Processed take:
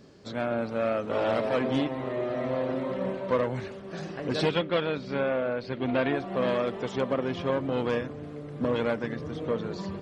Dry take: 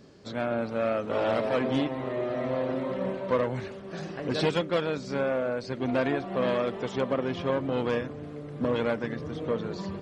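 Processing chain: 4.49–6.13 resonant high shelf 5100 Hz -13.5 dB, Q 1.5

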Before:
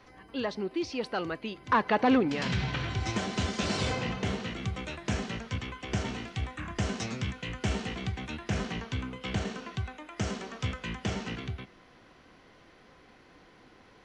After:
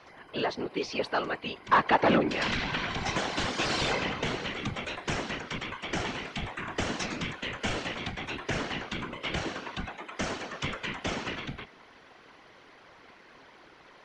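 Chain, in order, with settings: whisperiser; overdrive pedal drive 10 dB, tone 4300 Hz, clips at -11.5 dBFS

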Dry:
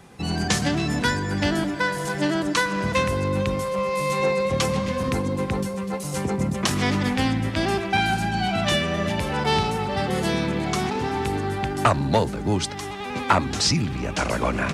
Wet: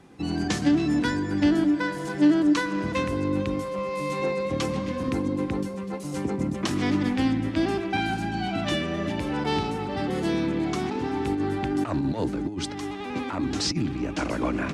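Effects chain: bell 300 Hz +14 dB 0.41 oct; 11.26–13.92 negative-ratio compressor -19 dBFS, ratio -0.5; high shelf 9700 Hz -10 dB; gain -6 dB

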